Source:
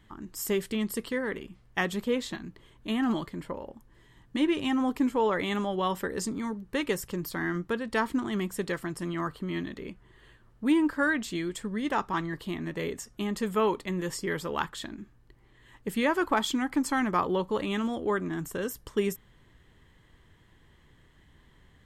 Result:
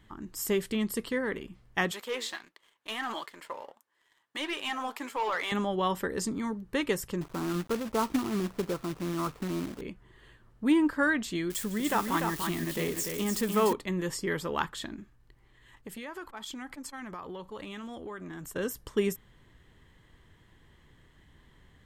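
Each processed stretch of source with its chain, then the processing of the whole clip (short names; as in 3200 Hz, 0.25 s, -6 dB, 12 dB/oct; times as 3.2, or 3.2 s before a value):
1.91–5.52 HPF 770 Hz + sample leveller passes 2 + flange 1.5 Hz, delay 1.6 ms, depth 7.6 ms, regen +84%
7.21–9.81 Chebyshev low-pass 1400 Hz, order 6 + companded quantiser 4-bit
11.5–13.73 switching spikes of -29.5 dBFS + tapped delay 0.154/0.294 s -17/-5 dB
15–18.56 bell 270 Hz -4.5 dB 3 oct + compressor 10:1, threshold -36 dBFS + core saturation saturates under 440 Hz
whole clip: dry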